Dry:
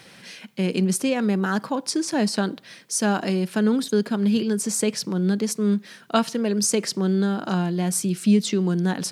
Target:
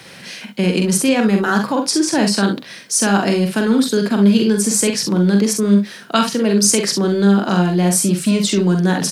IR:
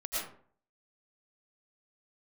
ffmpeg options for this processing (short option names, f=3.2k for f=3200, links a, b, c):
-filter_complex "[0:a]acrossover=split=180|1100[a][b][c];[a]volume=30.5dB,asoftclip=hard,volume=-30.5dB[d];[b]alimiter=limit=-19dB:level=0:latency=1[e];[d][e][c]amix=inputs=3:normalize=0,aecho=1:1:45|65:0.562|0.335,volume=7.5dB"